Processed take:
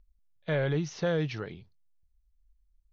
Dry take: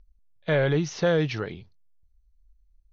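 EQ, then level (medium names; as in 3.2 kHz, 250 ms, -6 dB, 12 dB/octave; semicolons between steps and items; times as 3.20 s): peaking EQ 150 Hz +2.5 dB; -6.5 dB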